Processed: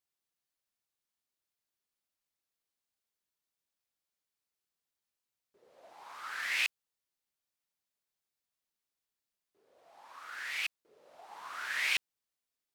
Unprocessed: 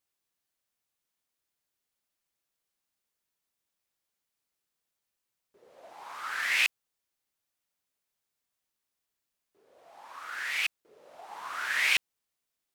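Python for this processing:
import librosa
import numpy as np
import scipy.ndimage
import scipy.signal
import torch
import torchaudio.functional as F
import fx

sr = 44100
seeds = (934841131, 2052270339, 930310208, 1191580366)

y = fx.peak_eq(x, sr, hz=4400.0, db=2.0, octaves=0.77)
y = y * 10.0 ** (-6.0 / 20.0)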